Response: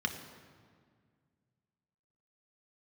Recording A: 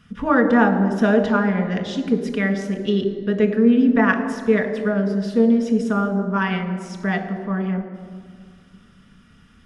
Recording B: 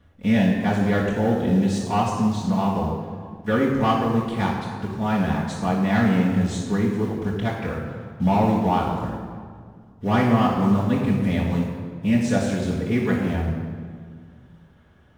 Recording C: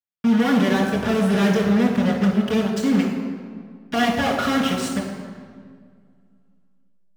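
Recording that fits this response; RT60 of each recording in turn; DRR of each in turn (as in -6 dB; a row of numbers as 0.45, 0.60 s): A; 1.9, 1.9, 1.9 s; 4.5, -8.5, -3.5 dB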